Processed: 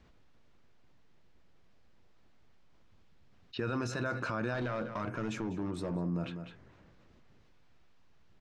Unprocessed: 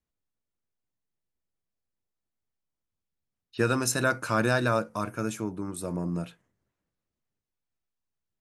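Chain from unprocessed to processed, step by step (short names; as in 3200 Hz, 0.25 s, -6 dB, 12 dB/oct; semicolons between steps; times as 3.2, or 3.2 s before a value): limiter -22.5 dBFS, peak gain reduction 10.5 dB; 4.54–5.96 overloaded stage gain 30 dB; air absorption 180 m; on a send: echo 0.199 s -15.5 dB; on the sum: fast leveller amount 50%; gain -3 dB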